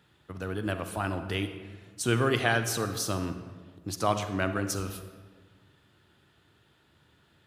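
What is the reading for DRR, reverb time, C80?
8.0 dB, 1.5 s, 10.5 dB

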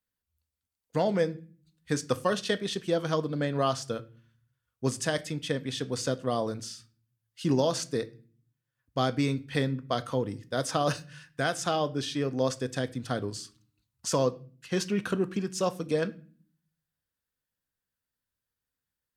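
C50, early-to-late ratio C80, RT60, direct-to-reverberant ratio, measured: 20.0 dB, 24.0 dB, 0.40 s, 12.0 dB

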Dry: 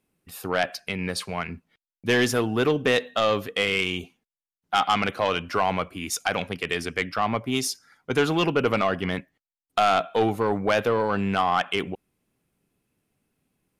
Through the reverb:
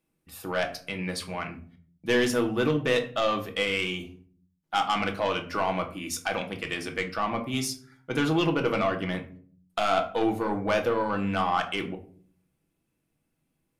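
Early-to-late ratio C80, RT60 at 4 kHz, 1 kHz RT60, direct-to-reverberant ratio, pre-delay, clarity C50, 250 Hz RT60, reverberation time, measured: 16.5 dB, 0.30 s, 0.40 s, 3.5 dB, 3 ms, 12.5 dB, 0.80 s, 0.50 s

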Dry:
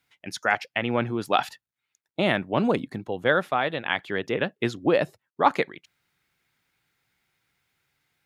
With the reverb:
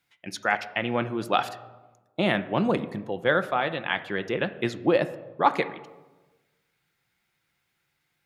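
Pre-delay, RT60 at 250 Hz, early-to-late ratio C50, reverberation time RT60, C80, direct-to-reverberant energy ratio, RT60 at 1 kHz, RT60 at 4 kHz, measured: 6 ms, 1.3 s, 14.5 dB, 1.2 s, 17.0 dB, 9.5 dB, 1.1 s, 0.75 s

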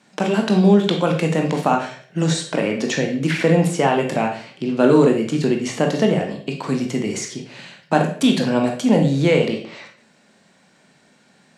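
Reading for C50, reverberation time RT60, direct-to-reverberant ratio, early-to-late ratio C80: 7.5 dB, 0.50 s, 2.0 dB, 11.5 dB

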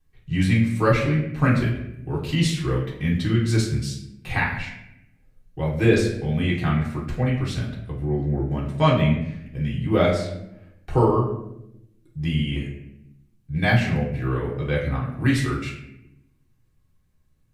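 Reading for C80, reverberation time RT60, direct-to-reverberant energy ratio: 8.0 dB, 0.85 s, −5.5 dB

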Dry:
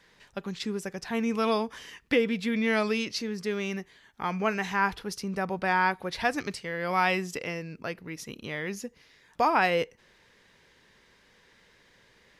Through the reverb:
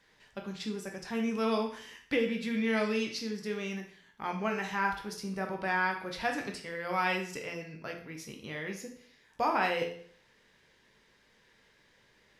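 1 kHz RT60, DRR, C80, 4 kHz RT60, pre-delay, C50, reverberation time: 0.55 s, 2.0 dB, 11.5 dB, 0.55 s, 11 ms, 7.5 dB, 0.55 s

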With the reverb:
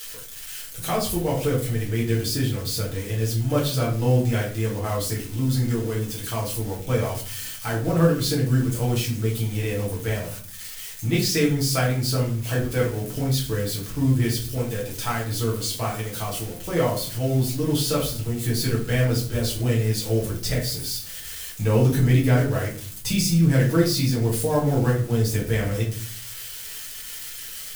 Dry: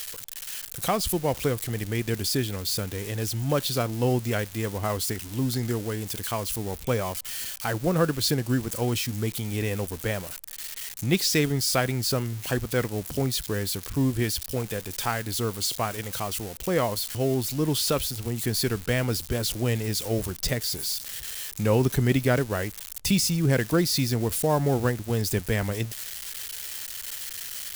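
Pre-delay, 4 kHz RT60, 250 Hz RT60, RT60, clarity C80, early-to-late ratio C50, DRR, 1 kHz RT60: 6 ms, 0.30 s, 0.75 s, 0.45 s, 12.0 dB, 7.5 dB, −5.5 dB, 0.45 s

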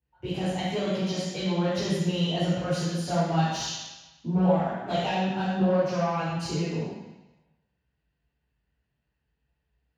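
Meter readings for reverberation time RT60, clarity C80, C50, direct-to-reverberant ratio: 1.1 s, 0.5 dB, −2.0 dB, −11.0 dB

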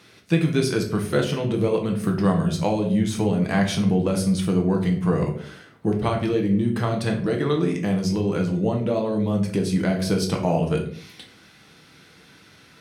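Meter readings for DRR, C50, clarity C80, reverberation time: 1.0 dB, 8.5 dB, 12.0 dB, non-exponential decay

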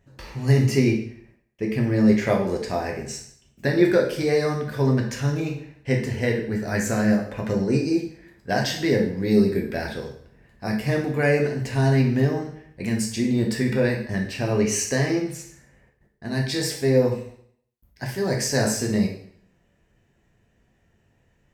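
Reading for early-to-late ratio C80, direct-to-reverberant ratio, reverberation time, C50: 10.5 dB, 0.0 dB, 0.60 s, 6.0 dB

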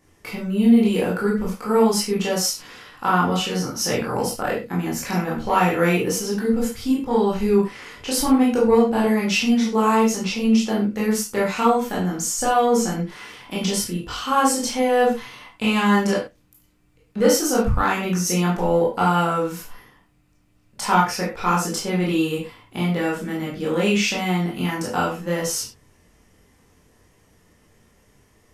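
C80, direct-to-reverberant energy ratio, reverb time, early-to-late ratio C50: 11.0 dB, −5.5 dB, non-exponential decay, 5.0 dB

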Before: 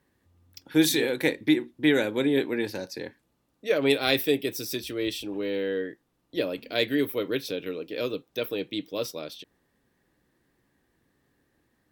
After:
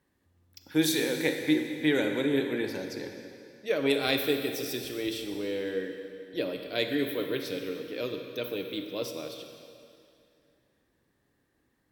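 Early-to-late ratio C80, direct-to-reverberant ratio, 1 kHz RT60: 6.5 dB, 5.0 dB, 2.5 s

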